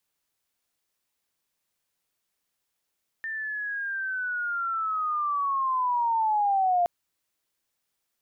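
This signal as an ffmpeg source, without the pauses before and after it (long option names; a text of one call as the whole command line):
ffmpeg -f lavfi -i "aevalsrc='pow(10,(-30+10.5*t/3.62)/20)*sin(2*PI*(1800*t-1110*t*t/(2*3.62)))':duration=3.62:sample_rate=44100" out.wav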